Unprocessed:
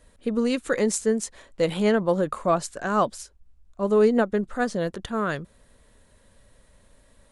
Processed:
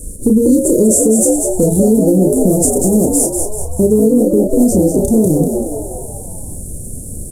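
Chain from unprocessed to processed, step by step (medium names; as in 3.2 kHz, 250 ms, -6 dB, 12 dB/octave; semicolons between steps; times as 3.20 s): CVSD coder 64 kbps; elliptic band-stop 400–8100 Hz, stop band 70 dB; treble shelf 4.1 kHz +7 dB; compression 3:1, threshold -39 dBFS, peak gain reduction 16.5 dB; doubling 32 ms -4.5 dB; on a send: frequency-shifting echo 193 ms, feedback 50%, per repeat +72 Hz, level -6 dB; on the sum: loudness maximiser +28.5 dB; trim -1 dB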